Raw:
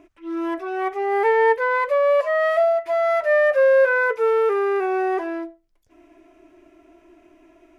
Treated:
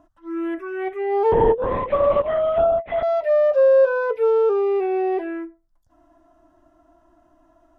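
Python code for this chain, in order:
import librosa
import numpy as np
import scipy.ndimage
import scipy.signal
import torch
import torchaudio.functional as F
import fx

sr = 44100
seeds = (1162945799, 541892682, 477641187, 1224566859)

y = fx.high_shelf(x, sr, hz=2500.0, db=-8.5)
y = fx.env_phaser(y, sr, low_hz=390.0, high_hz=2000.0, full_db=-16.5)
y = fx.lpc_vocoder(y, sr, seeds[0], excitation='whisper', order=10, at=(1.32, 3.03))
y = y * 10.0 ** (2.5 / 20.0)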